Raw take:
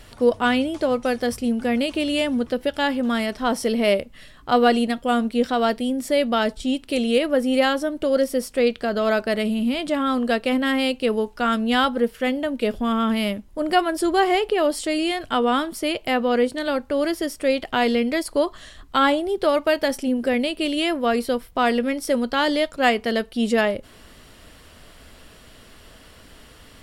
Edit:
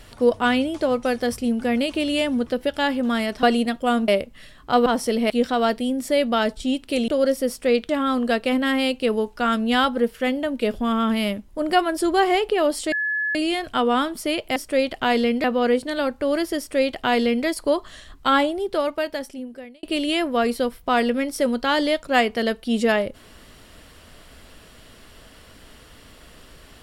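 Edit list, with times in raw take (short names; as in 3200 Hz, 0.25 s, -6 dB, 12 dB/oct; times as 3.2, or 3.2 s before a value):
3.43–3.87 swap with 4.65–5.3
7.08–8 cut
8.81–9.89 cut
14.92 add tone 1710 Hz -21 dBFS 0.43 s
17.27–18.15 copy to 16.13
19.01–20.52 fade out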